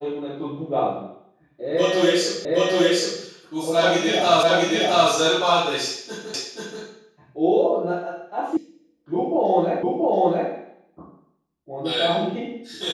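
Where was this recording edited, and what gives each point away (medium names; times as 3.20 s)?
2.45 s: repeat of the last 0.77 s
4.43 s: repeat of the last 0.67 s
6.34 s: repeat of the last 0.48 s
8.57 s: sound stops dead
9.83 s: repeat of the last 0.68 s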